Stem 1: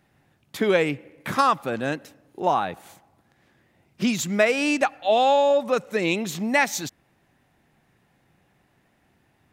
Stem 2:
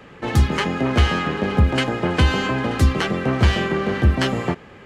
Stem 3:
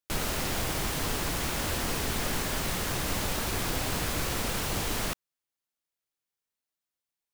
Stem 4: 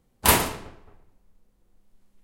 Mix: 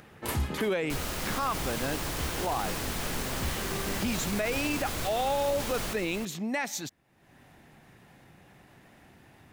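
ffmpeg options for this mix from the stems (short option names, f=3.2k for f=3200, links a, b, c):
-filter_complex "[0:a]acompressor=mode=upward:threshold=-36dB:ratio=2.5,volume=-6dB,asplit=2[a][b];[1:a]volume=-12.5dB[c];[2:a]adelay=800,volume=-3.5dB,asplit=2[d][e];[e]volume=-8dB[f];[3:a]volume=-17dB,asplit=2[g][h];[h]volume=-11.5dB[i];[b]apad=whole_len=214010[j];[c][j]sidechaincompress=threshold=-38dB:ratio=8:attack=33:release=1450[k];[f][i]amix=inputs=2:normalize=0,aecho=0:1:317:1[l];[a][k][d][g][l]amix=inputs=5:normalize=0,alimiter=limit=-20.5dB:level=0:latency=1:release=18"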